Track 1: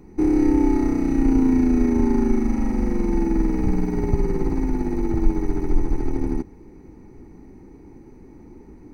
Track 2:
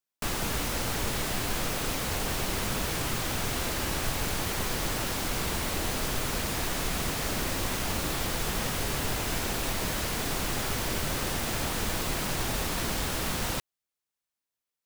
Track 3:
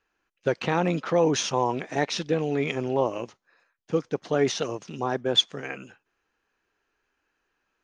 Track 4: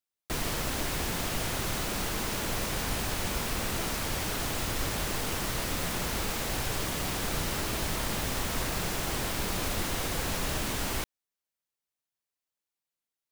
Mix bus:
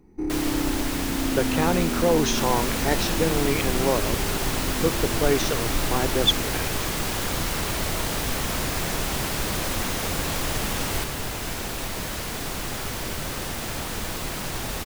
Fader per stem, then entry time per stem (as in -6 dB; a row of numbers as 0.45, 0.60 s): -9.0, 0.0, +0.5, +2.5 dB; 0.00, 2.15, 0.90, 0.00 s